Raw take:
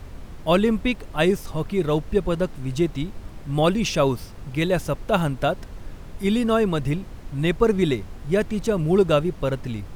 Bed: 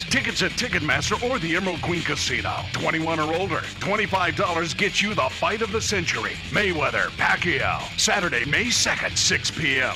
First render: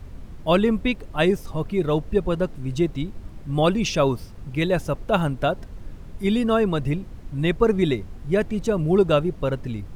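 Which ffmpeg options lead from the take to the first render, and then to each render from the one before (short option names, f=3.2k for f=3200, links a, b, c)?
-af "afftdn=nr=6:nf=-39"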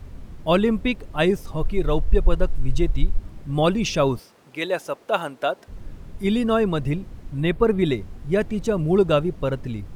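-filter_complex "[0:a]asplit=3[a][b][c];[a]afade=t=out:st=1.6:d=0.02[d];[b]asubboost=boost=12:cutoff=62,afade=t=in:st=1.6:d=0.02,afade=t=out:st=3.17:d=0.02[e];[c]afade=t=in:st=3.17:d=0.02[f];[d][e][f]amix=inputs=3:normalize=0,asettb=1/sr,asplit=3[g][h][i];[g]atrim=end=4.194[j];[h]atrim=start=4.19:end=5.68,asetpts=PTS-STARTPTS,afade=t=in:d=0.004:c=qsin,afade=t=out:st=1.486:d=0.004:c=qsin,highpass=420[k];[i]atrim=start=5.676[l];[j][k]acrossfade=d=0.004:c1=hsin:c2=qsin[m];[m][l]acrossfade=d=0.004:c1=qsin:c2=hsin,asettb=1/sr,asplit=3[n][o][p];[n]atrim=end=7.404[q];[o]atrim=start=7.4:end=7.86,asetpts=PTS-STARTPTS,afade=t=in:d=0.004:c=qsin,afade=t=out:st=0.456:d=0.004:c=qsin,equalizer=f=6.1k:w=2.1:g=-10.5[r];[p]atrim=start=7.856[s];[q][r]acrossfade=d=0.004:c1=hsin:c2=qsin[t];[t][s]acrossfade=d=0.004:c1=qsin:c2=hsin"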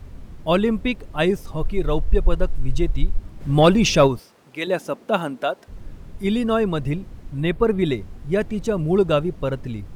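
-filter_complex "[0:a]asplit=3[a][b][c];[a]afade=t=out:st=3.4:d=0.02[d];[b]acontrast=63,afade=t=in:st=3.4:d=0.02,afade=t=out:st=4.06:d=0.02[e];[c]afade=t=in:st=4.06:d=0.02[f];[d][e][f]amix=inputs=3:normalize=0,asettb=1/sr,asplit=3[g][h][i];[g]atrim=end=4.674[j];[h]atrim=start=4.67:end=5.43,asetpts=PTS-STARTPTS,afade=t=in:d=0.004:c=qsin,afade=t=out:st=0.756:d=0.004:c=qsin,equalizer=f=220:t=o:w=0.96:g=13.5[k];[i]atrim=start=5.426[l];[j][k]acrossfade=d=0.004:c1=hsin:c2=qsin[m];[m][l]acrossfade=d=0.004:c1=qsin:c2=hsin"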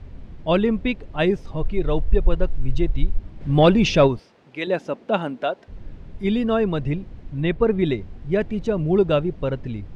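-af "lowpass=3.9k,equalizer=f=1.2k:t=o:w=0.62:g=-4"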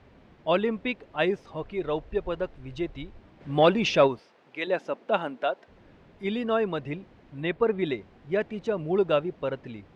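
-af "highpass=f=620:p=1,highshelf=f=3.9k:g=-8.5"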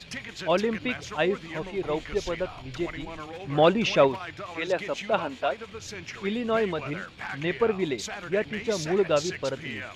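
-filter_complex "[1:a]volume=-15.5dB[a];[0:a][a]amix=inputs=2:normalize=0"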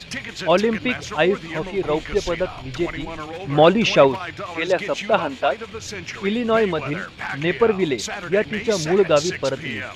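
-af "volume=7dB,alimiter=limit=-2dB:level=0:latency=1"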